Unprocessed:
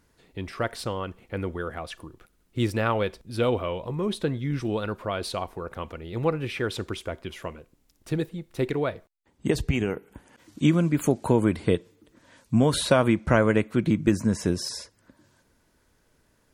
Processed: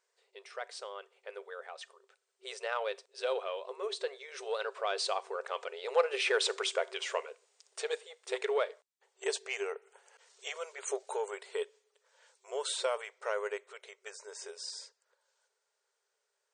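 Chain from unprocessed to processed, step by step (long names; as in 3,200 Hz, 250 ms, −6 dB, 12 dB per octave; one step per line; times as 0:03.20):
source passing by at 0:06.87, 17 m/s, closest 19 metres
high-shelf EQ 4,300 Hz +7.5 dB
in parallel at −4 dB: soft clipping −27.5 dBFS, distortion −11 dB
on the sum: brick-wall band-pass 380–9,200 Hz
level −1 dB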